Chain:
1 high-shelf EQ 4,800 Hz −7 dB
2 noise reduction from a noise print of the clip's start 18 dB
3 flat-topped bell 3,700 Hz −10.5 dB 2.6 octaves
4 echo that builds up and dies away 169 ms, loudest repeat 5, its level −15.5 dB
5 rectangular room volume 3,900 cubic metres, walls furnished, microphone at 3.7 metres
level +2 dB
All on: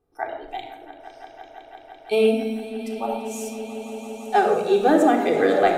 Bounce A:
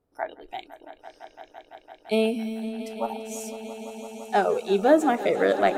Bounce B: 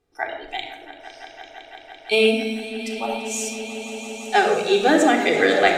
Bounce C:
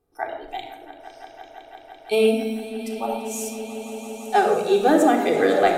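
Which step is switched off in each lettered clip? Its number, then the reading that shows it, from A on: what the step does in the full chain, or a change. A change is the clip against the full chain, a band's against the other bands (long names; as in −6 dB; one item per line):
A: 5, echo-to-direct ratio 1.5 dB to −6.0 dB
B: 3, change in momentary loudness spread +7 LU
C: 1, 8 kHz band +5.0 dB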